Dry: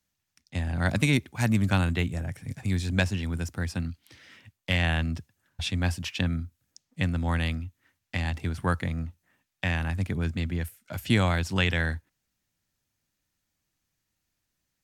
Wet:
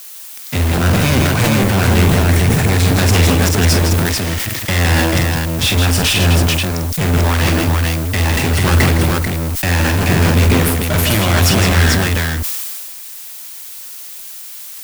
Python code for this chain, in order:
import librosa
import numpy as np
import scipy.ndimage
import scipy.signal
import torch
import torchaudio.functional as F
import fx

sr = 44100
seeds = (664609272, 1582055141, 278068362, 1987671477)

p1 = fx.rider(x, sr, range_db=10, speed_s=2.0)
p2 = fx.fuzz(p1, sr, gain_db=46.0, gate_db=-49.0)
p3 = fx.dmg_noise_colour(p2, sr, seeds[0], colour='blue', level_db=-33.0)
p4 = p3 + fx.echo_multitap(p3, sr, ms=(46, 163, 441), db=(-7.0, -5.5, -3.0), dry=0)
p5 = fx.sustainer(p4, sr, db_per_s=24.0)
y = p5 * librosa.db_to_amplitude(-1.5)